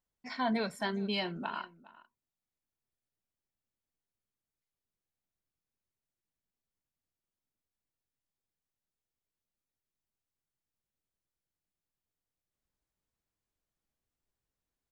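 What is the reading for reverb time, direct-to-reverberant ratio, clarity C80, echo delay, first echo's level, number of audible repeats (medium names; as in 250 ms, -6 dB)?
no reverb, no reverb, no reverb, 409 ms, -20.0 dB, 1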